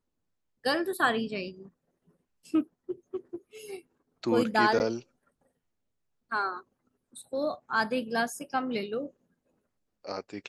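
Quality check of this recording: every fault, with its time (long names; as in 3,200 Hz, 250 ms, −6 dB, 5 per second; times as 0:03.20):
0:04.79–0:04.80: drop-out 9.7 ms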